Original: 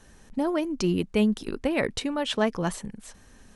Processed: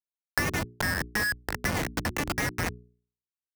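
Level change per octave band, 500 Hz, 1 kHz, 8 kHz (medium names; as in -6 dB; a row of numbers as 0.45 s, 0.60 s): -9.5 dB, -0.5 dB, +4.0 dB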